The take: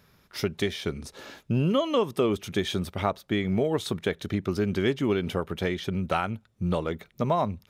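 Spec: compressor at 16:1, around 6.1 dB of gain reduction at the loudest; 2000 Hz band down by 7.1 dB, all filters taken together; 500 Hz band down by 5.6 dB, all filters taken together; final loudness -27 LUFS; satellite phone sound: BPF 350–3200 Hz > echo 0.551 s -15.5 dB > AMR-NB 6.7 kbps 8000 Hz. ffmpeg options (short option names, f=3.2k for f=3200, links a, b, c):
-af "equalizer=f=500:t=o:g=-5,equalizer=f=2k:t=o:g=-8,acompressor=threshold=-28dB:ratio=16,highpass=350,lowpass=3.2k,aecho=1:1:551:0.168,volume=13.5dB" -ar 8000 -c:a libopencore_amrnb -b:a 6700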